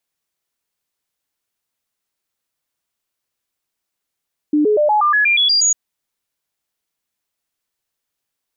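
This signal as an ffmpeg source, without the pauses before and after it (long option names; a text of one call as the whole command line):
ffmpeg -f lavfi -i "aevalsrc='0.282*clip(min(mod(t,0.12),0.12-mod(t,0.12))/0.005,0,1)*sin(2*PI*299*pow(2,floor(t/0.12)/2)*mod(t,0.12))':duration=1.2:sample_rate=44100" out.wav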